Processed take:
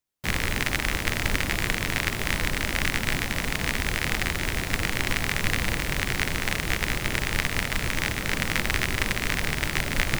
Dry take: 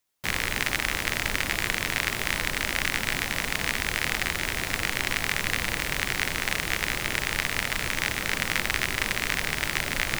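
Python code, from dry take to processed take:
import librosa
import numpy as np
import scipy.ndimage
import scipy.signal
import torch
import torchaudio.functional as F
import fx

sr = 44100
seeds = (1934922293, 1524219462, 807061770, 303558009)

y = fx.low_shelf(x, sr, hz=390.0, db=8.0)
y = fx.upward_expand(y, sr, threshold_db=-41.0, expansion=1.5)
y = y * 10.0 ** (1.5 / 20.0)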